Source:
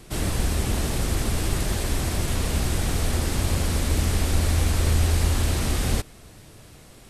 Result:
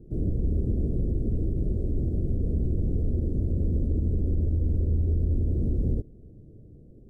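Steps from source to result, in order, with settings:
inverse Chebyshev low-pass filter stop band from 900 Hz, stop band 40 dB
brickwall limiter −17.5 dBFS, peak gain reduction 7.5 dB

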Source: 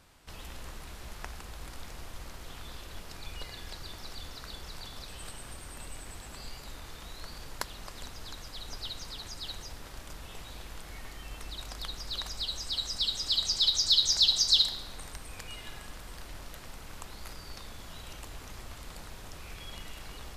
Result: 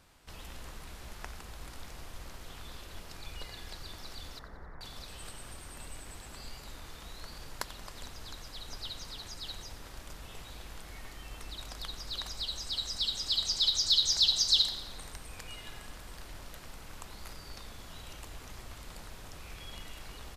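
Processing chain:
0:04.39–0:04.81: elliptic low-pass filter 1,900 Hz
repeating echo 90 ms, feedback 54%, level −16 dB
level −2 dB

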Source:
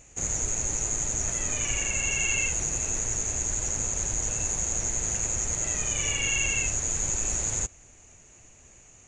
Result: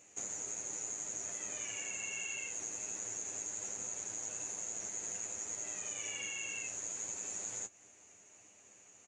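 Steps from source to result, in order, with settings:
high-pass filter 240 Hz 12 dB per octave
downward compressor, threshold −32 dBFS, peak gain reduction 9 dB
ambience of single reflections 10 ms −4.5 dB, 26 ms −12 dB
level −7.5 dB

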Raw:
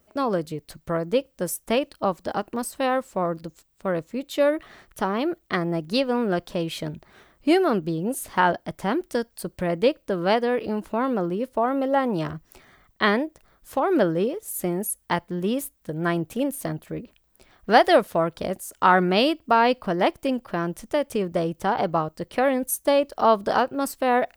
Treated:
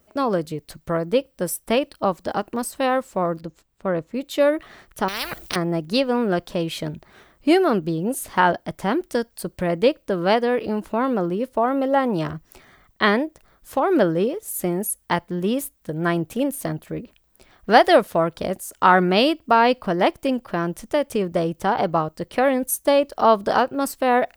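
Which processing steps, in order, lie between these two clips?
0:00.92–0:01.96: notch filter 6,700 Hz, Q 6.4
0:03.40–0:04.13: high-shelf EQ 5,200 Hz → 3,300 Hz −11 dB
0:05.08–0:05.56: every bin compressed towards the loudest bin 10 to 1
level +2.5 dB

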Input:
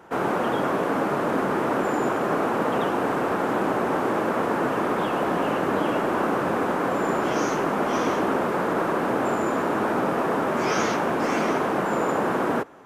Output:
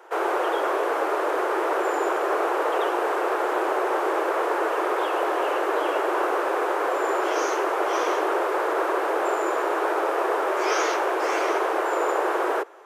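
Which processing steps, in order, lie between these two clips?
Butterworth high-pass 340 Hz 72 dB per octave
level +1 dB

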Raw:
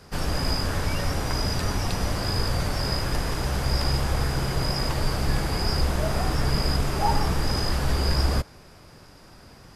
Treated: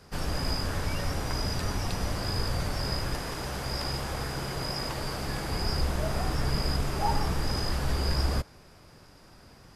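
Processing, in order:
0:03.14–0:05.48: low-shelf EQ 120 Hz −9 dB
level −4.5 dB

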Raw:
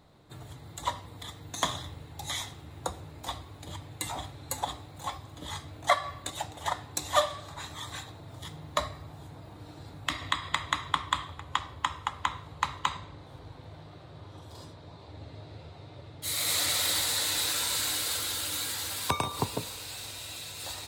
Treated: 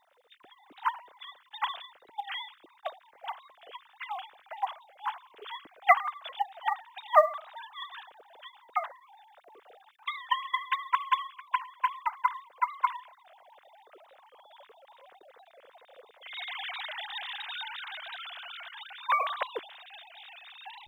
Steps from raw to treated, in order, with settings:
three sine waves on the formant tracks
log-companded quantiser 8 bits
wow of a warped record 45 rpm, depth 100 cents

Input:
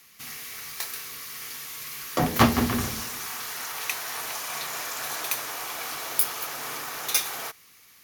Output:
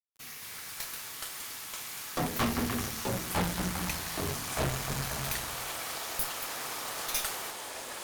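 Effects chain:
delay with pitch and tempo change per echo 153 ms, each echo −5 semitones, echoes 2
bit reduction 7 bits
tube saturation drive 22 dB, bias 0.7
level −2.5 dB

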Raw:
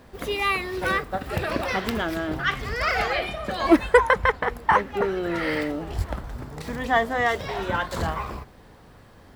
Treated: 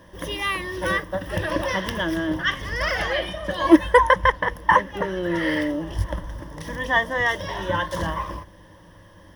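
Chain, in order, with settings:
EQ curve with evenly spaced ripples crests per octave 1.2, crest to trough 13 dB
level −1 dB

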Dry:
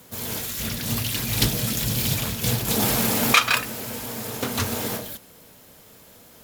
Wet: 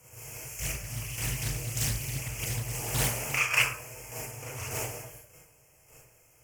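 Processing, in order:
drawn EQ curve 130 Hz 0 dB, 210 Hz −22 dB, 340 Hz −9 dB, 570 Hz −4 dB, 1,700 Hz −8 dB, 2,600 Hz +5 dB, 6,900 Hz +2 dB, 15,000 Hz −6 dB
square-wave tremolo 1.7 Hz, depth 65%, duty 15%
Butterworth band-reject 3,800 Hz, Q 1.1
convolution reverb RT60 0.50 s, pre-delay 28 ms, DRR −6 dB
highs frequency-modulated by the lows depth 0.74 ms
level −4.5 dB

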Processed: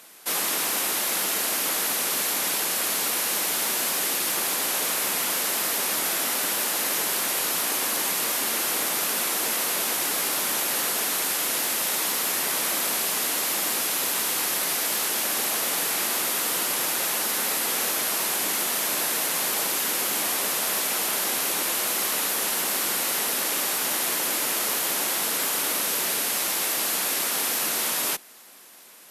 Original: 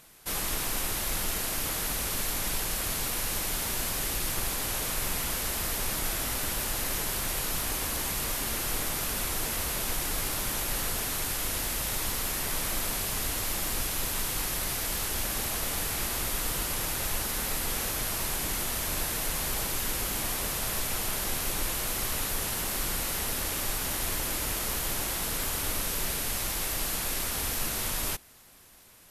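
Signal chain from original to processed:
Bessel high-pass filter 300 Hz, order 8
in parallel at −8 dB: asymmetric clip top −31 dBFS
on the sum: level +4 dB

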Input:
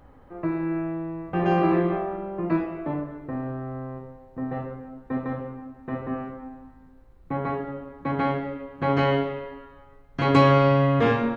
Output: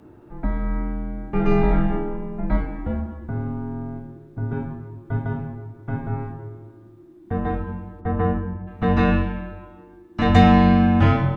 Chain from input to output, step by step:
0:08.00–0:08.66: low-pass filter 2,200 Hz → 1,200 Hz 12 dB per octave
frequency shifter −370 Hz
level +4 dB

